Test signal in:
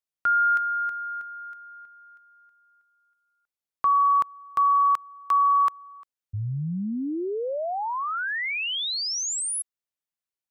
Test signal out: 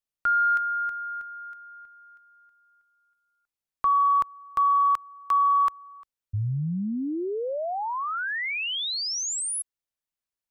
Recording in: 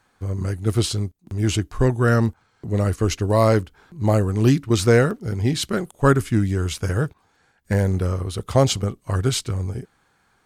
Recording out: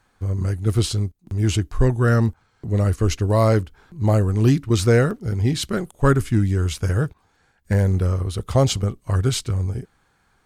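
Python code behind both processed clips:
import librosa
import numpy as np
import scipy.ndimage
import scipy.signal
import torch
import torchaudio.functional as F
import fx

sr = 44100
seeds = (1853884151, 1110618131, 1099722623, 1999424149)

p1 = fx.low_shelf(x, sr, hz=75.0, db=10.5)
p2 = 10.0 ** (-9.5 / 20.0) * np.tanh(p1 / 10.0 ** (-9.5 / 20.0))
p3 = p1 + (p2 * 10.0 ** (-7.5 / 20.0))
y = p3 * 10.0 ** (-4.0 / 20.0)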